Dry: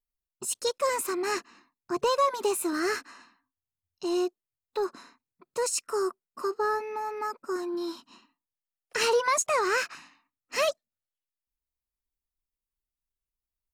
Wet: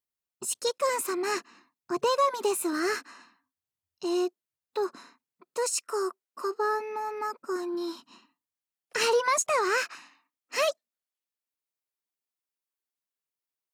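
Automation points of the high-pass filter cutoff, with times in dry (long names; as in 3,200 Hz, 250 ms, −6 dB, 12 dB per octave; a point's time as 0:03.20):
0:04.94 110 Hz
0:05.72 330 Hz
0:06.45 330 Hz
0:06.91 100 Hz
0:09.45 100 Hz
0:09.94 270 Hz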